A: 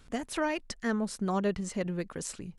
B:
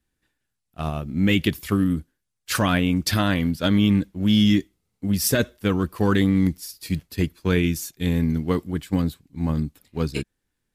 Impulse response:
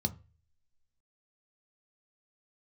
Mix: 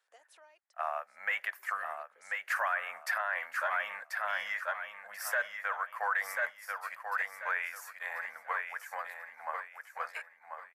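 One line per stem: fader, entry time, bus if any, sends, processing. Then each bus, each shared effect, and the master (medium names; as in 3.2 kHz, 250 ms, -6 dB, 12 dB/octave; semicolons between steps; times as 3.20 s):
1.17 s -18 dB -> 1.61 s -6 dB, 0.00 s, no send, no echo send, compression 1.5:1, threshold -37 dBFS, peak gain reduction 5 dB; auto duck -13 dB, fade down 0.55 s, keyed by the second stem
-2.5 dB, 0.00 s, no send, echo send -6.5 dB, Chebyshev band-stop 160–730 Hz, order 2; resonant high shelf 2.5 kHz -12.5 dB, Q 3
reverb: none
echo: feedback delay 1038 ms, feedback 28%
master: steep high-pass 510 Hz 36 dB/octave; peak limiter -22 dBFS, peak gain reduction 11 dB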